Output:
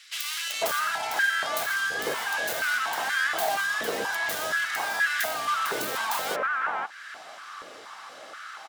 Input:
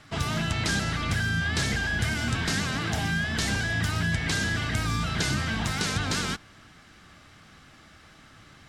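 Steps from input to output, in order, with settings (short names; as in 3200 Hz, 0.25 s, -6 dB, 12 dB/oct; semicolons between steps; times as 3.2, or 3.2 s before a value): tracing distortion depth 0.49 ms; bands offset in time highs, lows 0.5 s, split 2100 Hz; compressor 2:1, threshold -40 dBFS, peak gain reduction 10 dB; 0.92–1.36 notch 1200 Hz, Q 6.9; stepped high-pass 4.2 Hz 470–1600 Hz; gain +8.5 dB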